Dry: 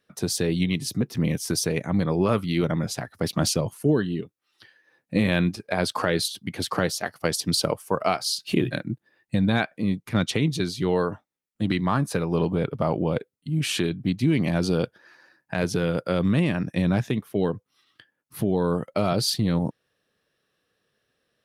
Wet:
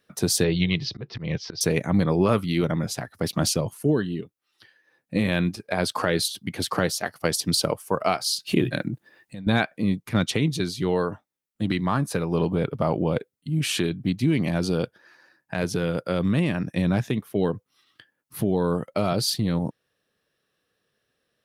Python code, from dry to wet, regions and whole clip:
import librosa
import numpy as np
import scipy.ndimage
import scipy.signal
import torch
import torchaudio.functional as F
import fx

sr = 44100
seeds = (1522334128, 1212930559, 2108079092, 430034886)

y = fx.chain(x, sr, fx.steep_lowpass(hz=5100.0, slope=48),
    fx.peak_eq(hz=250.0, db=-13.0, octaves=0.51),
    fx.auto_swell(attack_ms=180.0), at=(0.44, 1.61))
y = fx.chain(y, sr, fx.low_shelf(hz=79.0, db=-7.5),
    fx.over_compress(threshold_db=-33.0, ratio=-1.0), at=(8.8, 9.47))
y = fx.high_shelf(y, sr, hz=10000.0, db=3.5)
y = fx.rider(y, sr, range_db=10, speed_s=2.0)